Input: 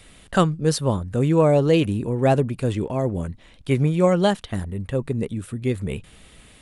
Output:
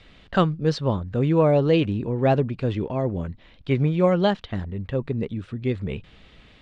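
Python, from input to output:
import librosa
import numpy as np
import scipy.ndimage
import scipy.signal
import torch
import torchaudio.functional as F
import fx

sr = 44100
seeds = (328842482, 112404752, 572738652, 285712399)

y = scipy.signal.sosfilt(scipy.signal.butter(4, 4700.0, 'lowpass', fs=sr, output='sos'), x)
y = y * 10.0 ** (-1.5 / 20.0)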